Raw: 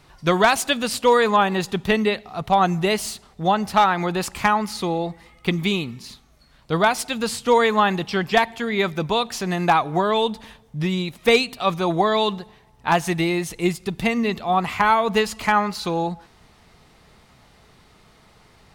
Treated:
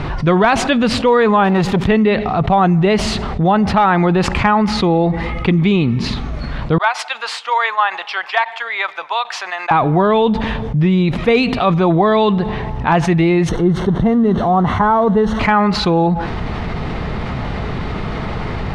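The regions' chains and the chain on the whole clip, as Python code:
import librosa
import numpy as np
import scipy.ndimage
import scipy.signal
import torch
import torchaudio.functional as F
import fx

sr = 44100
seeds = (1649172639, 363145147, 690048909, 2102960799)

y = fx.chain(x, sr, fx.crossing_spikes(level_db=-26.0),
    fx.transformer_sat(knee_hz=640.0), at=(1.44, 1.87))
y = fx.chain(y, sr, fx.highpass(hz=810.0, slope=24),
    fx.upward_expand(threshold_db=-33.0, expansion=2.5), at=(6.78, 9.71))
y = fx.chain(y, sr, fx.crossing_spikes(level_db=-14.0),
    fx.moving_average(points=18), at=(13.49, 15.4))
y = scipy.signal.sosfilt(scipy.signal.butter(2, 2600.0, 'lowpass', fs=sr, output='sos'), y)
y = fx.low_shelf(y, sr, hz=380.0, db=6.5)
y = fx.env_flatten(y, sr, amount_pct=70)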